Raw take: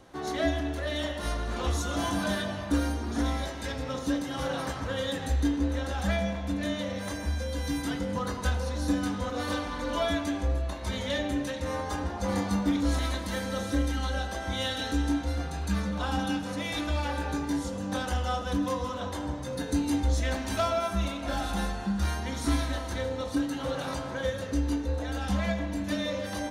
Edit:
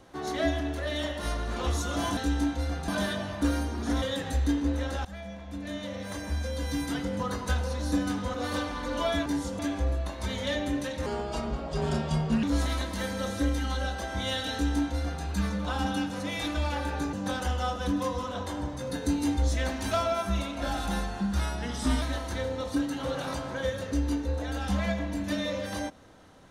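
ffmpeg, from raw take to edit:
-filter_complex "[0:a]asplit=12[a][b][c][d][e][f][g][h][i][j][k][l];[a]atrim=end=2.172[m];[b]atrim=start=14.848:end=15.562[n];[c]atrim=start=2.168:end=3.312[o];[d]atrim=start=4.978:end=6.01,asetpts=PTS-STARTPTS,afade=t=out:st=1.028:d=0.004:c=hsin:silence=0.133352[p];[e]atrim=start=6.01:end=10.222,asetpts=PTS-STARTPTS,afade=t=in:d=1.42:silence=0.133352[q];[f]atrim=start=17.458:end=17.792[r];[g]atrim=start=10.218:end=11.694[s];[h]atrim=start=11.69:end=12.76,asetpts=PTS-STARTPTS,asetrate=34398,aresample=44100,atrim=end_sample=60496,asetpts=PTS-STARTPTS[t];[i]atrim=start=12.756:end=17.462[u];[j]atrim=start=17.788:end=22.054[v];[k]atrim=start=22.05:end=22.62,asetpts=PTS-STARTPTS,asetrate=40131,aresample=44100,atrim=end_sample=27623,asetpts=PTS-STARTPTS[w];[l]atrim=start=22.616[x];[m][n]acrossfade=d=0.004:c1=hsin:c2=hsin[y];[y][o]acrossfade=d=0.004:c1=hsin:c2=hsin[z];[p][q]concat=n=2:v=0:a=1[aa];[z][aa]acrossfade=d=0.004:c1=hsin:c2=hsin[ab];[ab][r]acrossfade=d=0.004:c1=hsin:c2=hsin[ac];[ac][s]acrossfade=d=0.004:c1=hsin:c2=hsin[ad];[ad][t]acrossfade=d=0.004:c1=hsin:c2=hsin[ae];[ae][u]acrossfade=d=0.004:c1=hsin:c2=hsin[af];[af][v]acrossfade=d=0.004:c1=hsin:c2=hsin[ag];[ag][w]acrossfade=d=0.004:c1=hsin:c2=hsin[ah];[ah][x]acrossfade=d=0.004:c1=hsin:c2=hsin"

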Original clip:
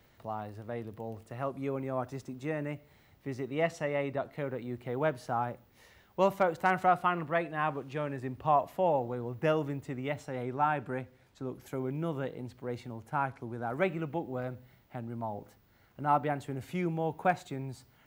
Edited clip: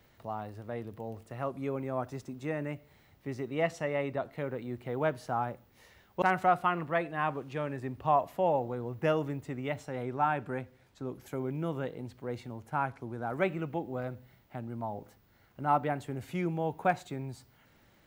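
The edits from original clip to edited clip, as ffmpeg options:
-filter_complex "[0:a]asplit=2[a][b];[a]atrim=end=6.222[c];[b]atrim=start=6.618[d];[c][d]acrossfade=d=0.004:c1=hsin:c2=hsin"

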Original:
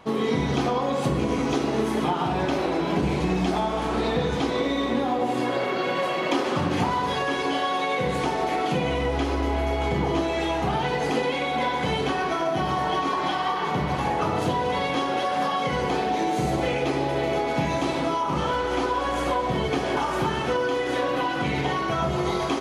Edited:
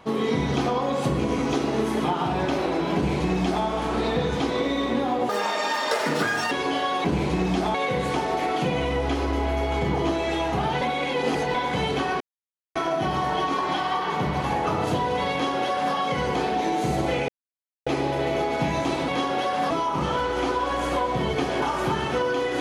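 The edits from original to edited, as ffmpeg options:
-filter_complex "[0:a]asplit=11[a][b][c][d][e][f][g][h][i][j][k];[a]atrim=end=5.294[l];[b]atrim=start=5.29:end=7.31,asetpts=PTS-STARTPTS,asetrate=72765,aresample=44100,atrim=end_sample=53989,asetpts=PTS-STARTPTS[m];[c]atrim=start=7.306:end=7.842[n];[d]atrim=start=2.948:end=3.652[o];[e]atrim=start=7.838:end=10.912[p];[f]atrim=start=10.908:end=11.642,asetpts=PTS-STARTPTS,areverse[q];[g]atrim=start=11.638:end=12.3,asetpts=PTS-STARTPTS,afade=t=out:st=0.658:d=0.004:c=hsin,apad=pad_dur=0.55[r];[h]atrim=start=12.3:end=16.83,asetpts=PTS-STARTPTS,afade=t=in:d=0.004:c=hsin,afade=t=out:st=4.526:d=0.004:c=hsin,apad=pad_dur=0.58[s];[i]atrim=start=16.83:end=18.052,asetpts=PTS-STARTPTS,afade=t=in:d=0.004:c=hsin[t];[j]atrim=start=14.868:end=15.492[u];[k]atrim=start=18.048[v];[l][m]acrossfade=d=0.004:c1=hsin:c2=hsin[w];[w][n]acrossfade=d=0.004:c1=hsin:c2=hsin[x];[x][o]acrossfade=d=0.004:c1=hsin:c2=hsin[y];[y][p]acrossfade=d=0.004:c1=hsin:c2=hsin[z];[z][q]acrossfade=d=0.004:c1=hsin:c2=hsin[aa];[r][s][t]concat=n=3:v=0:a=1[ab];[aa][ab]acrossfade=d=0.004:c1=hsin:c2=hsin[ac];[ac][u]acrossfade=d=0.004:c1=hsin:c2=hsin[ad];[ad][v]acrossfade=d=0.004:c1=hsin:c2=hsin"

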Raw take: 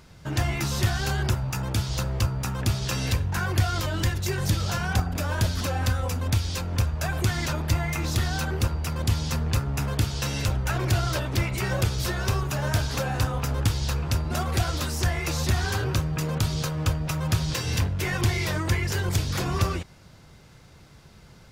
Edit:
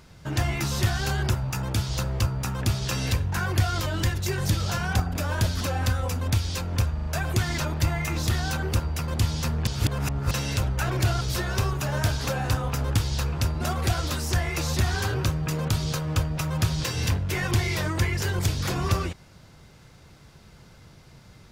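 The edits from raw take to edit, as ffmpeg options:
-filter_complex "[0:a]asplit=7[a][b][c][d][e][f][g];[a]atrim=end=6.982[h];[b]atrim=start=6.938:end=6.982[i];[c]atrim=start=6.938:end=6.982[j];[d]atrim=start=6.938:end=9.552[k];[e]atrim=start=9.548:end=10.192,asetpts=PTS-STARTPTS,areverse[l];[f]atrim=start=10.188:end=11.092[m];[g]atrim=start=11.908[n];[h][i]acrossfade=d=0.004:c1=hsin:c2=hsin[o];[o][j]acrossfade=d=0.004:c1=hsin:c2=hsin[p];[p][k]acrossfade=d=0.004:c1=hsin:c2=hsin[q];[q][l]acrossfade=d=0.004:c1=hsin:c2=hsin[r];[r][m]acrossfade=d=0.004:c1=hsin:c2=hsin[s];[s][n]acrossfade=d=0.004:c1=hsin:c2=hsin"

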